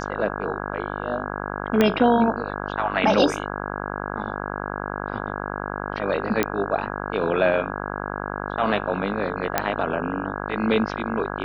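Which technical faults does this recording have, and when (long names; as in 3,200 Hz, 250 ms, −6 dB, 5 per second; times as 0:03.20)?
mains buzz 50 Hz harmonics 33 −30 dBFS
0:01.81: click −6 dBFS
0:06.43: click −6 dBFS
0:09.58: click −4 dBFS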